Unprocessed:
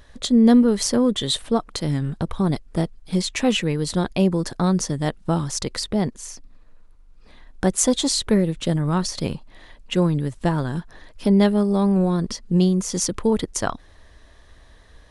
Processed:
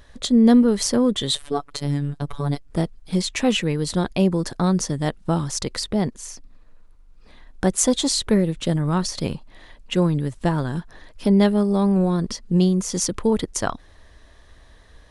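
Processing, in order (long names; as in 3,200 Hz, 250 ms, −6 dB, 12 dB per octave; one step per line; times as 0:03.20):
0:01.35–0:02.70: phases set to zero 143 Hz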